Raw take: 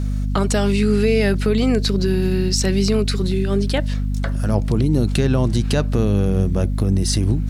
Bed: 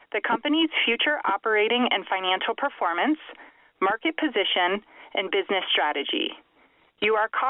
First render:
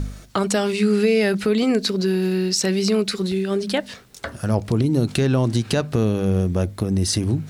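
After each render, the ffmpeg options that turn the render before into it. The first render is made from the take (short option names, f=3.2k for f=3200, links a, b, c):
-af "bandreject=f=50:t=h:w=4,bandreject=f=100:t=h:w=4,bandreject=f=150:t=h:w=4,bandreject=f=200:t=h:w=4,bandreject=f=250:t=h:w=4"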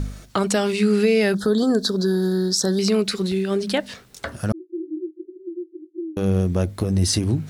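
-filter_complex "[0:a]asettb=1/sr,asplit=3[a][b][c];[a]atrim=end=1.344[d];[b]atrim=start=1.34:end=2.79,asetpts=PTS-STARTPTS,afade=t=in:d=0.004:c=qsin,afade=t=out:st=1.446:d=0.004:c=qsin,asuperstop=centerf=2400:order=12:qfactor=1.6[e];[c]atrim=start=2.786[f];[d][e]acrossfade=d=0.004:c1=hsin:c2=qsin[g];[g][f]acrossfade=d=0.004:c1=qsin:c2=hsin,asettb=1/sr,asplit=3[h][i][j];[h]atrim=end=4.524[k];[i]atrim=start=4.52:end=6.17,asetpts=PTS-STARTPTS,afade=t=in:d=0.004:c=qsin,afade=t=out:st=1.646:d=0.004:c=qsin,asuperpass=centerf=340:order=12:qfactor=5.7[l];[j]atrim=start=6.166[m];[k][l]acrossfade=d=0.004:c1=hsin:c2=qsin[n];[n][m]acrossfade=d=0.004:c1=qsin:c2=hsin,asettb=1/sr,asplit=3[o][p][q];[o]atrim=end=6.794[r];[p]atrim=start=6.79:end=7.19,asetpts=PTS-STARTPTS,afade=t=in:d=0.004:c=qsin,afade=t=out:st=0.396:d=0.004:c=qsin,asplit=2[s][t];[t]adelay=12,volume=-7dB[u];[s][u]amix=inputs=2:normalize=0,atrim=end_sample=17640[v];[q]atrim=start=7.186[w];[r][v]acrossfade=d=0.004:c1=hsin:c2=qsin[x];[x][w]acrossfade=d=0.004:c1=qsin:c2=hsin"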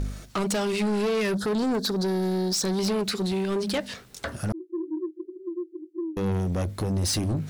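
-af "asoftclip=type=tanh:threshold=-22dB"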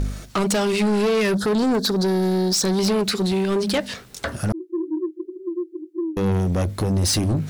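-af "volume=5.5dB"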